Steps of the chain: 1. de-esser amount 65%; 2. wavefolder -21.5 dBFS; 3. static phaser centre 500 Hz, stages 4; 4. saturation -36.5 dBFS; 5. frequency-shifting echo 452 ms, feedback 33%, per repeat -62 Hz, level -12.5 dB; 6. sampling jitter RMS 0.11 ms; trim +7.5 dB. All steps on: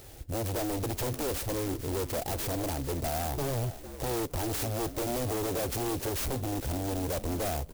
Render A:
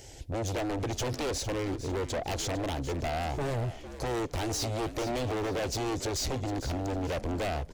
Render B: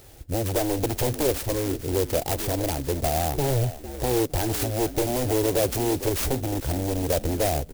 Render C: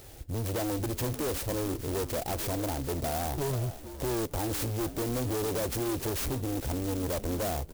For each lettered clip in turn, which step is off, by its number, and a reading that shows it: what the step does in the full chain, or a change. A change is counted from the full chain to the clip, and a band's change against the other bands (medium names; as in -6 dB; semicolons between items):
6, 2 kHz band +2.5 dB; 4, distortion -7 dB; 2, distortion -3 dB